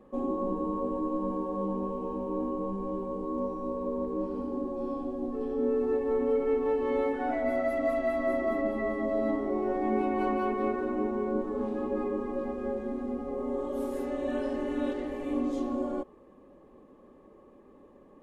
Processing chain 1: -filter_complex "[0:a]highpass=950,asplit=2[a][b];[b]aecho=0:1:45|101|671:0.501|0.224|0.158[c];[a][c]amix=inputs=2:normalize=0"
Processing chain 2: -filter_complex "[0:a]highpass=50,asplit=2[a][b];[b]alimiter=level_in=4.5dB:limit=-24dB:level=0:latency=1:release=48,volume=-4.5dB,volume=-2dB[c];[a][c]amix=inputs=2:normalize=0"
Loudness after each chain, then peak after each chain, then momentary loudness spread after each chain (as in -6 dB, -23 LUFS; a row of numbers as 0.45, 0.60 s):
-39.5, -28.0 LUFS; -23.5, -15.0 dBFS; 11, 5 LU